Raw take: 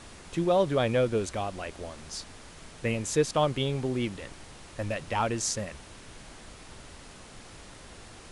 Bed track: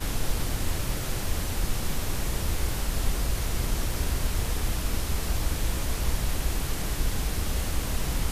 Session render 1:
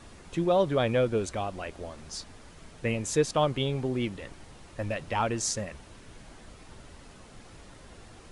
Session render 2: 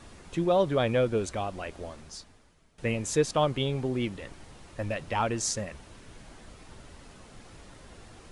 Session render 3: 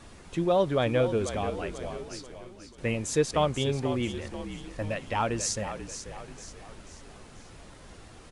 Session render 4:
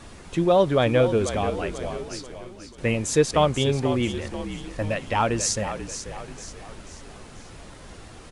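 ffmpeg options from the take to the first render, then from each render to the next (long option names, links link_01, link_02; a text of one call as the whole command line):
ffmpeg -i in.wav -af "afftdn=noise_reduction=6:noise_floor=-49" out.wav
ffmpeg -i in.wav -filter_complex "[0:a]asplit=2[link_01][link_02];[link_01]atrim=end=2.78,asetpts=PTS-STARTPTS,afade=type=out:start_time=1.91:duration=0.87:curve=qua:silence=0.149624[link_03];[link_02]atrim=start=2.78,asetpts=PTS-STARTPTS,afade=type=in:duration=0.004:curve=hsin:silence=0.149624[link_04];[link_03][link_04]concat=n=2:v=0:a=1" out.wav
ffmpeg -i in.wav -filter_complex "[0:a]asplit=6[link_01][link_02][link_03][link_04][link_05][link_06];[link_02]adelay=487,afreqshift=-46,volume=-10dB[link_07];[link_03]adelay=974,afreqshift=-92,volume=-16.7dB[link_08];[link_04]adelay=1461,afreqshift=-138,volume=-23.5dB[link_09];[link_05]adelay=1948,afreqshift=-184,volume=-30.2dB[link_10];[link_06]adelay=2435,afreqshift=-230,volume=-37dB[link_11];[link_01][link_07][link_08][link_09][link_10][link_11]amix=inputs=6:normalize=0" out.wav
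ffmpeg -i in.wav -af "volume=5.5dB" out.wav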